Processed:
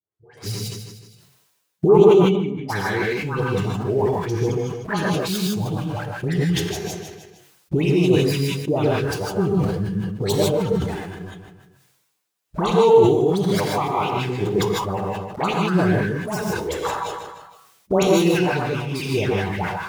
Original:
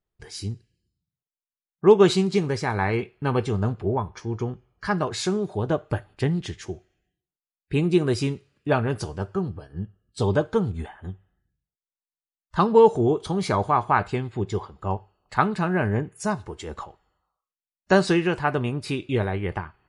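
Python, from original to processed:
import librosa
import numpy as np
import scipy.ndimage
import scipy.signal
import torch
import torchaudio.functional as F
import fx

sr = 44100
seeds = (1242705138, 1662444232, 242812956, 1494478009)

p1 = fx.tracing_dist(x, sr, depth_ms=0.15)
p2 = fx.recorder_agc(p1, sr, target_db=-10.5, rise_db_per_s=13.0, max_gain_db=30)
p3 = scipy.signal.sosfilt(scipy.signal.butter(2, 130.0, 'highpass', fs=sr, output='sos'), p2)
p4 = fx.peak_eq(p3, sr, hz=230.0, db=-12.5, octaves=0.22)
p5 = fx.dispersion(p4, sr, late='highs', ms=124.0, hz=1300.0)
p6 = np.where(np.abs(p5) >= 10.0 ** (-35.0 / 20.0), p5, 0.0)
p7 = p5 + (p6 * librosa.db_to_amplitude(-4.0))
p8 = fx.spec_box(p7, sr, start_s=5.09, length_s=0.79, low_hz=340.0, high_hz=2200.0, gain_db=-8)
p9 = fx.env_flanger(p8, sr, rest_ms=9.4, full_db=-13.0)
p10 = fx.formant_cascade(p9, sr, vowel='i', at=(2.12, 2.68), fade=0.02)
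p11 = p10 + fx.echo_feedback(p10, sr, ms=155, feedback_pct=43, wet_db=-18.5, dry=0)
p12 = fx.rev_gated(p11, sr, seeds[0], gate_ms=180, shape='rising', drr_db=-0.5)
p13 = fx.sustainer(p12, sr, db_per_s=44.0)
y = p13 * librosa.db_to_amplitude(-4.0)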